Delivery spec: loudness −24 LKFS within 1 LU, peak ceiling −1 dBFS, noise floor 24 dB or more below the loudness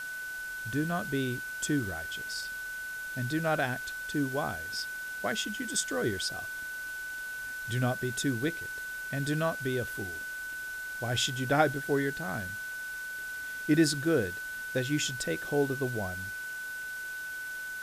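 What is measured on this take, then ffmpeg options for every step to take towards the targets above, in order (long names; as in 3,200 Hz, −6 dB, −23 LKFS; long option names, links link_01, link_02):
interfering tone 1,500 Hz; level of the tone −36 dBFS; background noise floor −39 dBFS; target noise floor −56 dBFS; integrated loudness −32.0 LKFS; sample peak −11.0 dBFS; target loudness −24.0 LKFS
→ -af "bandreject=frequency=1500:width=30"
-af "afftdn=noise_reduction=17:noise_floor=-39"
-af "volume=8dB"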